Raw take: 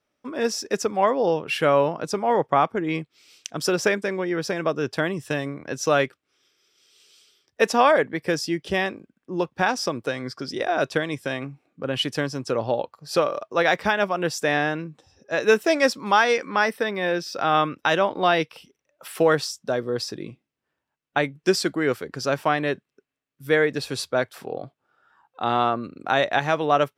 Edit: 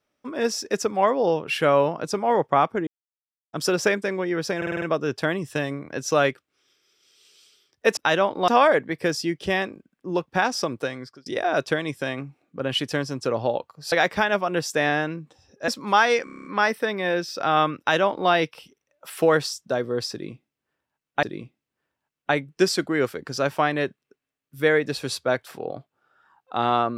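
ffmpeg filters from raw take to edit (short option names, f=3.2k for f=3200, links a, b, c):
-filter_complex "[0:a]asplit=21[a][b][c][d][e][f][g][h][i][j][k][l][m][n][o][p][q][r][s][t][u];[a]atrim=end=2.87,asetpts=PTS-STARTPTS,afade=t=out:st=2.866:d=0.004:c=hsin[v];[b]atrim=start=2.87:end=3.53,asetpts=PTS-STARTPTS,volume=0[w];[c]atrim=start=3.53:end=4.622,asetpts=PTS-STARTPTS,afade=t=in:d=0.004:c=hsin[x];[d]atrim=start=4.568:end=4.622[y];[e]atrim=start=4.568:end=4.622[z];[f]atrim=start=4.568:end=4.622[aa];[g]atrim=start=4.568:end=4.622[ab];[h]atrim=start=4.568:end=7.722[ac];[i]atrim=start=17.768:end=18.282[ad];[j]atrim=start=7.718:end=10.5,asetpts=PTS-STARTPTS,afade=t=out:st=2.332:d=0.45[ae];[k]atrim=start=10.5:end=13.162,asetpts=PTS-STARTPTS,afade=t=in:d=0.004:c=hsin[af];[l]atrim=start=13.598:end=15.362[ag];[m]atrim=start=15.868:end=16.462[ah];[n]atrim=start=16.428:end=16.462[ai];[o]atrim=start=16.428:end=16.462[aj];[p]atrim=start=16.428:end=16.462[ak];[q]atrim=start=16.428:end=16.462[al];[r]atrim=start=16.428:end=16.462[am];[s]atrim=start=16.428:end=16.462[an];[t]atrim=start=16.428:end=21.212[ao];[u]atrim=start=20.098[ap];[v][w][x]concat=n=3:v=0:a=1[aq];[aq][y]acrossfade=d=0.004:c1=hsin:c2=hsin[ar];[ar][z]acrossfade=d=0.004:c1=hsin:c2=hsin[as];[as][aa]acrossfade=d=0.004:c1=hsin:c2=hsin[at];[at][ab]acrossfade=d=0.004:c1=hsin:c2=hsin[au];[au][ac]acrossfade=d=0.004:c1=hsin:c2=hsin[av];[av][ad]acrossfade=d=0.004:c1=hsin:c2=hsin[aw];[ae][af]concat=n=2:v=0:a=1[ax];[aw][ax]acrossfade=d=0.004:c1=hsin:c2=hsin[ay];[ay][ag]acrossfade=d=0.004:c1=hsin:c2=hsin[az];[az][ah]acrossfade=d=0.004:c1=hsin:c2=hsin[ba];[ba][ai]acrossfade=d=0.004:c1=hsin:c2=hsin[bb];[bb][aj]acrossfade=d=0.004:c1=hsin:c2=hsin[bc];[bc][ak]acrossfade=d=0.004:c1=hsin:c2=hsin[bd];[bd][al]acrossfade=d=0.004:c1=hsin:c2=hsin[be];[be][am]acrossfade=d=0.004:c1=hsin:c2=hsin[bf];[bf][an]acrossfade=d=0.004:c1=hsin:c2=hsin[bg];[bg][ao]acrossfade=d=0.004:c1=hsin:c2=hsin[bh];[bh][ap]acrossfade=d=0.004:c1=hsin:c2=hsin"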